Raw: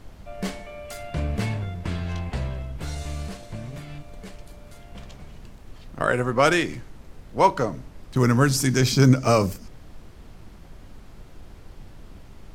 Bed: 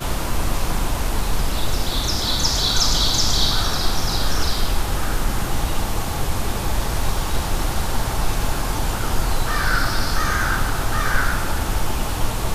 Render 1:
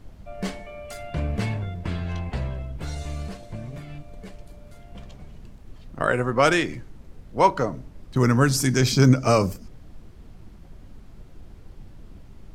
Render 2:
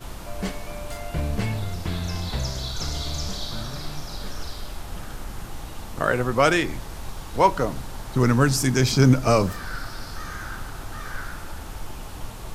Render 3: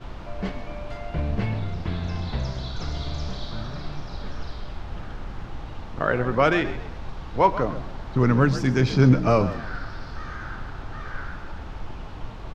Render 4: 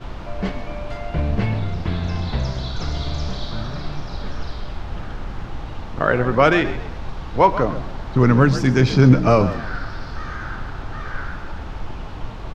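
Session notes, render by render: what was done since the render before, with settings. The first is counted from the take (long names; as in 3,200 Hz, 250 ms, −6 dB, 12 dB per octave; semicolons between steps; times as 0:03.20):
broadband denoise 6 dB, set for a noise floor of −46 dBFS
mix in bed −14 dB
high-frequency loss of the air 220 metres; echo with shifted repeats 131 ms, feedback 34%, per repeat +54 Hz, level −14 dB
level +5 dB; brickwall limiter −2 dBFS, peak gain reduction 1.5 dB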